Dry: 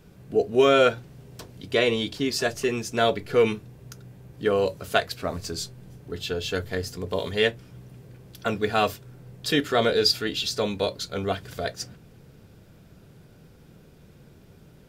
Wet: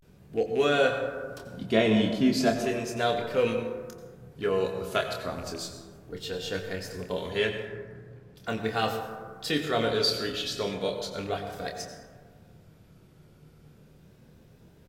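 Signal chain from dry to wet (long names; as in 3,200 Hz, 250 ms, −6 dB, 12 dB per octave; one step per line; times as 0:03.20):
loose part that buzzes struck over −27 dBFS, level −27 dBFS
0:01.47–0:02.52: hollow resonant body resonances 210/710 Hz, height 13 dB, ringing for 30 ms
0:07.65–0:08.36: low-pass filter 3,000 Hz 6 dB per octave
pitch vibrato 0.36 Hz 89 cents
double-tracking delay 27 ms −6.5 dB
dense smooth reverb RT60 1.6 s, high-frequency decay 0.35×, pre-delay 75 ms, DRR 6 dB
level −6 dB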